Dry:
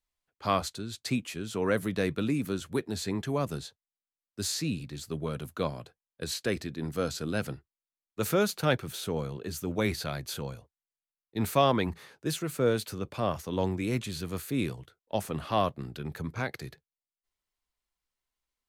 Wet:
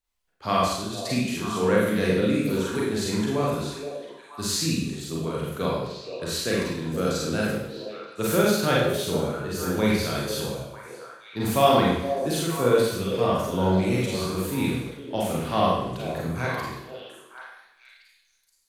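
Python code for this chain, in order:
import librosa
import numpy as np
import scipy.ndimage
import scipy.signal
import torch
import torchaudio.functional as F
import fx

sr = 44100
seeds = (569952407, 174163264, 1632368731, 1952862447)

y = fx.echo_stepped(x, sr, ms=473, hz=460.0, octaves=1.4, feedback_pct=70, wet_db=-6.0)
y = fx.rev_schroeder(y, sr, rt60_s=0.79, comb_ms=33, drr_db=-5.0)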